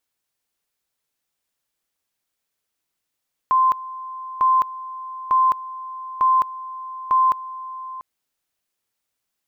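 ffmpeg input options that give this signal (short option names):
-f lavfi -i "aevalsrc='pow(10,(-13-17*gte(mod(t,0.9),0.21))/20)*sin(2*PI*1040*t)':d=4.5:s=44100"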